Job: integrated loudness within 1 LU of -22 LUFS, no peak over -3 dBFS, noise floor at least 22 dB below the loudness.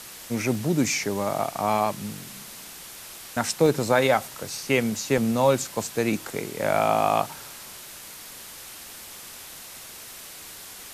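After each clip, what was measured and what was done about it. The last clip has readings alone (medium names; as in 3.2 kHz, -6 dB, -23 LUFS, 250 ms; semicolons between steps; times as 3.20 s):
dropouts 6; longest dropout 1.5 ms; noise floor -42 dBFS; noise floor target -47 dBFS; loudness -24.5 LUFS; peak level -7.5 dBFS; loudness target -22.0 LUFS
-> interpolate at 0.55/1.86/3.66/4.50/5.18/5.77 s, 1.5 ms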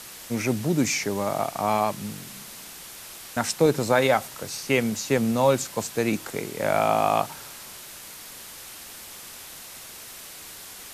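dropouts 0; noise floor -42 dBFS; noise floor target -47 dBFS
-> noise reduction 6 dB, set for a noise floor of -42 dBFS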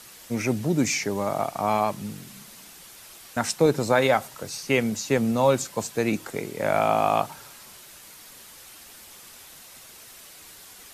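noise floor -47 dBFS; loudness -24.5 LUFS; peak level -7.5 dBFS; loudness target -22.0 LUFS
-> trim +2.5 dB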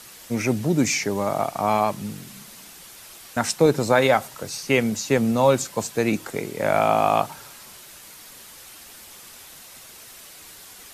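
loudness -22.0 LUFS; peak level -5.0 dBFS; noise floor -45 dBFS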